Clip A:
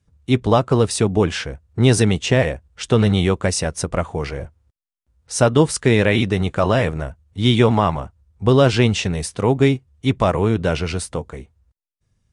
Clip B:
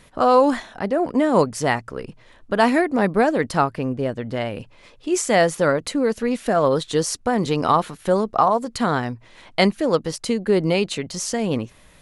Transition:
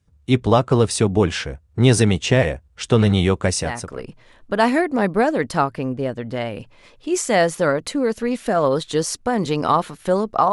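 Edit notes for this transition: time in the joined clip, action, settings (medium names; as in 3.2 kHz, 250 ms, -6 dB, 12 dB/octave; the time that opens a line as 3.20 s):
clip A
3.77 s: go over to clip B from 1.77 s, crossfade 0.52 s linear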